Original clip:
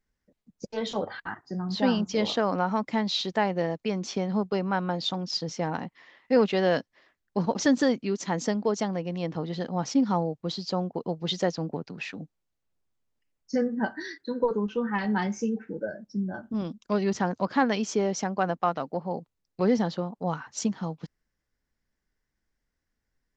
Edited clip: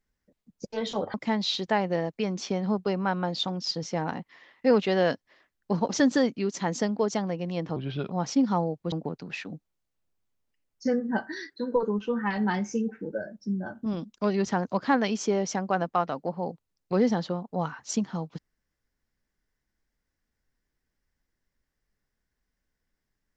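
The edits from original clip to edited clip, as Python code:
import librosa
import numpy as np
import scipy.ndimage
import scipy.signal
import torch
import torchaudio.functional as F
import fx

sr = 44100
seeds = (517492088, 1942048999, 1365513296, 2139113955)

y = fx.edit(x, sr, fx.cut(start_s=1.14, length_s=1.66),
    fx.speed_span(start_s=9.42, length_s=0.28, speed=0.8),
    fx.cut(start_s=10.51, length_s=1.09), tone=tone)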